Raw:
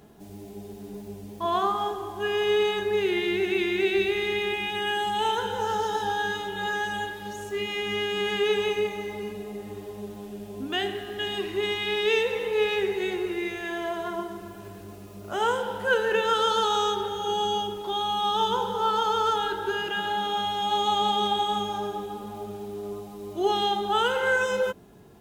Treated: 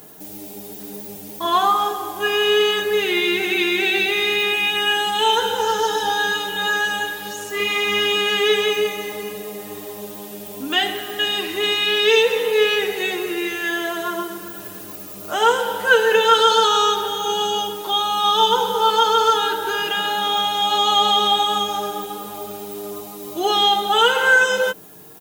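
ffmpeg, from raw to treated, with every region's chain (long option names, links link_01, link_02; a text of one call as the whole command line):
ffmpeg -i in.wav -filter_complex "[0:a]asettb=1/sr,asplit=3[link_01][link_02][link_03];[link_01]atrim=end=7.554[link_04];[link_02]atrim=start=7.55:end=8.16,asetpts=PTS-STARTPTS,afade=type=in:duration=0.004:curve=qsin,afade=type=out:start_time=0.606:duration=0.004:curve=qsin,equalizer=frequency=1100:width_type=o:width=0.37:gain=9,asplit=2[link_05][link_06];[link_06]adelay=49,volume=-5dB[link_07];[link_05][link_07]amix=inputs=2:normalize=0,atrim=end_sample=26901[link_08];[link_03]atrim=start=8.156[link_09];[link_04][link_08]acrossfade=duration=0.004:curve1=hsin:curve2=qsin[link_10];[link_10][link_09]acrossfade=duration=0.004:curve1=qsin:curve2=hsin,acrossover=split=6200[link_11][link_12];[link_12]acompressor=threshold=-59dB:ratio=4:attack=1:release=60[link_13];[link_11][link_13]amix=inputs=2:normalize=0,aemphasis=mode=production:type=bsi,aecho=1:1:6.5:0.65,volume=7dB" out.wav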